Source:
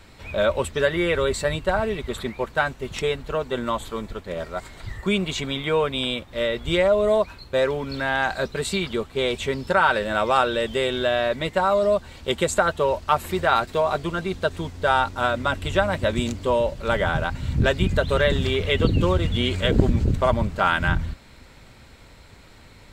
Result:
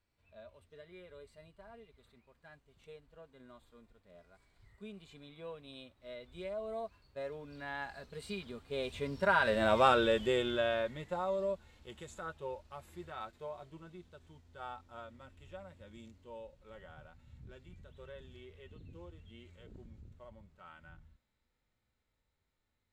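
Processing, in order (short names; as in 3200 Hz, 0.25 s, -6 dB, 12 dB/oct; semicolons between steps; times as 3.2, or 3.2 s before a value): Doppler pass-by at 9.81, 17 m/s, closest 6.2 m; harmonic-percussive split percussive -11 dB; gain -2 dB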